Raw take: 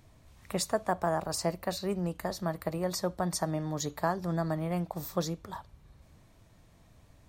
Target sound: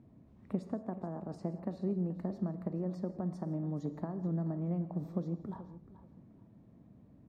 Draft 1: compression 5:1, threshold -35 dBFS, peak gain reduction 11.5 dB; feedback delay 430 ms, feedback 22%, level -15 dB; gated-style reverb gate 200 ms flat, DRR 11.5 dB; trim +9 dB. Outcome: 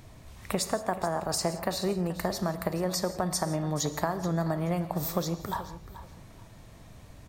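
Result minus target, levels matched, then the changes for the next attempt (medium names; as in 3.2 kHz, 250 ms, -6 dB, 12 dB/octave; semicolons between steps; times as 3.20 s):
250 Hz band -4.0 dB
add after compression: band-pass filter 230 Hz, Q 2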